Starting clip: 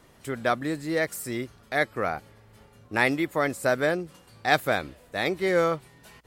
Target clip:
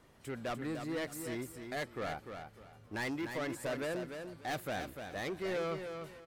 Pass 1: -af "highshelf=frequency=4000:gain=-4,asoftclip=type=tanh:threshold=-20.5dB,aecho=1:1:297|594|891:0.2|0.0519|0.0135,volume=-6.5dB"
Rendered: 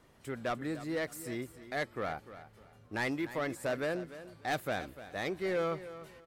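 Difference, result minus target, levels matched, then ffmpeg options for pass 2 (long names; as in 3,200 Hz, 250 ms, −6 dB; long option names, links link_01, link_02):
echo-to-direct −7 dB; soft clipping: distortion −5 dB
-af "highshelf=frequency=4000:gain=-4,asoftclip=type=tanh:threshold=-27dB,aecho=1:1:297|594|891:0.447|0.116|0.0302,volume=-6.5dB"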